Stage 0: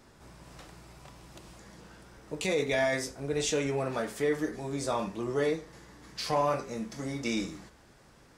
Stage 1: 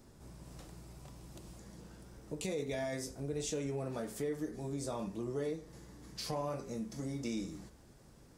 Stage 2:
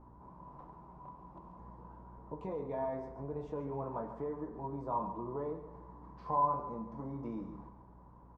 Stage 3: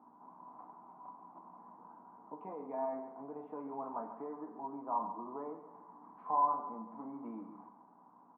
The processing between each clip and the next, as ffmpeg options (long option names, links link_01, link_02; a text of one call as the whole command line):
ffmpeg -i in.wav -af "equalizer=frequency=1800:width=0.35:gain=-11,acompressor=threshold=-40dB:ratio=2,volume=1.5dB" out.wav
ffmpeg -i in.wav -af "aeval=exprs='val(0)+0.00224*(sin(2*PI*60*n/s)+sin(2*PI*2*60*n/s)/2+sin(2*PI*3*60*n/s)/3+sin(2*PI*4*60*n/s)/4+sin(2*PI*5*60*n/s)/5)':channel_layout=same,lowpass=frequency=990:width_type=q:width=12,aecho=1:1:139|278|417|556:0.266|0.106|0.0426|0.017,volume=-4dB" out.wav
ffmpeg -i in.wav -af "highpass=frequency=240:width=0.5412,highpass=frequency=240:width=1.3066,equalizer=frequency=250:width_type=q:width=4:gain=4,equalizer=frequency=370:width_type=q:width=4:gain=-7,equalizer=frequency=530:width_type=q:width=4:gain=-8,equalizer=frequency=760:width_type=q:width=4:gain=7,equalizer=frequency=1200:width_type=q:width=4:gain=3,equalizer=frequency=1800:width_type=q:width=4:gain=-5,lowpass=frequency=2100:width=0.5412,lowpass=frequency=2100:width=1.3066,volume=-1.5dB" out.wav